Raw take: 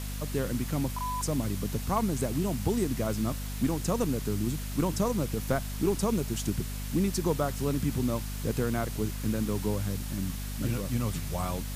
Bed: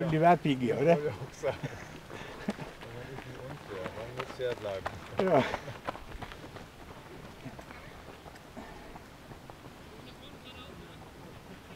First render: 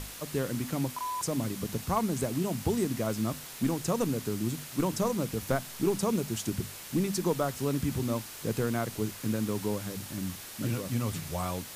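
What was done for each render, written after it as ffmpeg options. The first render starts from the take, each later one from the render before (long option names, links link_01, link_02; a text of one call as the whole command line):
ffmpeg -i in.wav -af "bandreject=frequency=50:width_type=h:width=6,bandreject=frequency=100:width_type=h:width=6,bandreject=frequency=150:width_type=h:width=6,bandreject=frequency=200:width_type=h:width=6,bandreject=frequency=250:width_type=h:width=6" out.wav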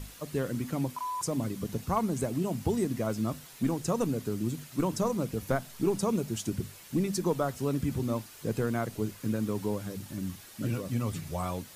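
ffmpeg -i in.wav -af "afftdn=noise_reduction=8:noise_floor=-44" out.wav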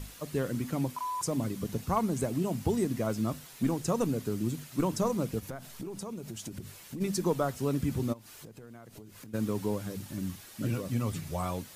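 ffmpeg -i in.wav -filter_complex "[0:a]asplit=3[link_01][link_02][link_03];[link_01]afade=type=out:start_time=5.39:duration=0.02[link_04];[link_02]acompressor=threshold=-36dB:ratio=8:attack=3.2:release=140:knee=1:detection=peak,afade=type=in:start_time=5.39:duration=0.02,afade=type=out:start_time=7:duration=0.02[link_05];[link_03]afade=type=in:start_time=7:duration=0.02[link_06];[link_04][link_05][link_06]amix=inputs=3:normalize=0,asplit=3[link_07][link_08][link_09];[link_07]afade=type=out:start_time=8.12:duration=0.02[link_10];[link_08]acompressor=threshold=-44dB:ratio=16:attack=3.2:release=140:knee=1:detection=peak,afade=type=in:start_time=8.12:duration=0.02,afade=type=out:start_time=9.33:duration=0.02[link_11];[link_09]afade=type=in:start_time=9.33:duration=0.02[link_12];[link_10][link_11][link_12]amix=inputs=3:normalize=0" out.wav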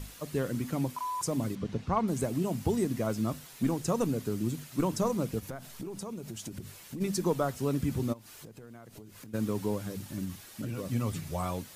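ffmpeg -i in.wav -filter_complex "[0:a]asettb=1/sr,asplit=3[link_01][link_02][link_03];[link_01]atrim=end=1.554[link_04];[link_02]atrim=start=1.55:end=2.08,asetpts=PTS-STARTPTS,afade=type=in:duration=0.004:curve=qsin,afade=type=out:start_time=0.526:duration=0.004:curve=qsin,lowpass=4000[link_05];[link_03]atrim=start=2.076[link_06];[link_04][link_05]acrossfade=duration=0.004:curve1=hsin:curve2=qsin[link_07];[link_07][link_06]acrossfade=duration=0.004:curve1=qsin:curve2=hsin,asplit=3[link_08][link_09][link_10];[link_08]afade=type=out:start_time=10.24:duration=0.02[link_11];[link_09]acompressor=threshold=-32dB:ratio=5:attack=3.2:release=140:knee=1:detection=peak,afade=type=in:start_time=10.24:duration=0.02,afade=type=out:start_time=10.77:duration=0.02[link_12];[link_10]afade=type=in:start_time=10.77:duration=0.02[link_13];[link_11][link_12][link_13]amix=inputs=3:normalize=0" out.wav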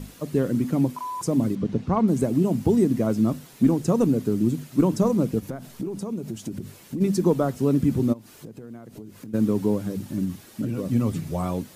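ffmpeg -i in.wav -af "equalizer=frequency=250:width_type=o:width=2.5:gain=11" out.wav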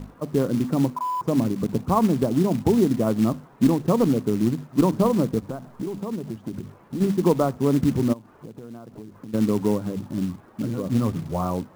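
ffmpeg -i in.wav -af "lowpass=frequency=1100:width_type=q:width=1.8,acrusher=bits=5:mode=log:mix=0:aa=0.000001" out.wav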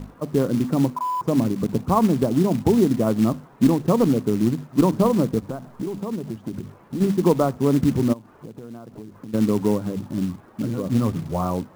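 ffmpeg -i in.wav -af "volume=1.5dB" out.wav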